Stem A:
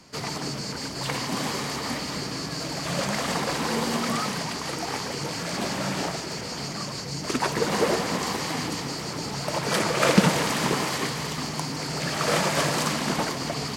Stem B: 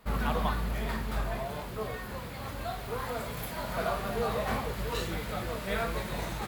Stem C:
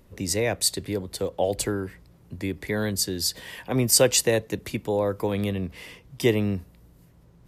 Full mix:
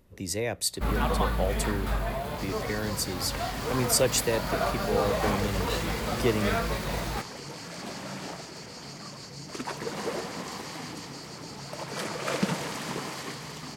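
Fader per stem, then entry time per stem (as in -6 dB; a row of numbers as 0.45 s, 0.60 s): -9.5 dB, +3.0 dB, -5.5 dB; 2.25 s, 0.75 s, 0.00 s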